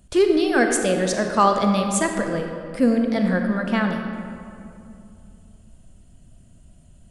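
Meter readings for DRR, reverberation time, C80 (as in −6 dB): 4.0 dB, 2.7 s, 5.5 dB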